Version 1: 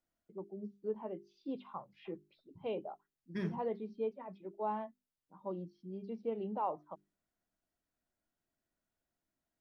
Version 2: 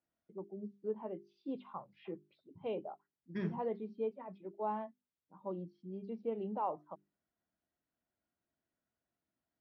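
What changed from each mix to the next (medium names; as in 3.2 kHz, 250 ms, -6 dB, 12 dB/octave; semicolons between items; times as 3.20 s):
second voice: add high-pass 67 Hz; master: add distance through air 140 m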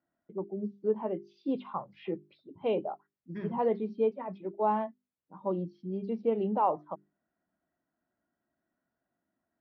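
first voice +9.5 dB; second voice: add distance through air 200 m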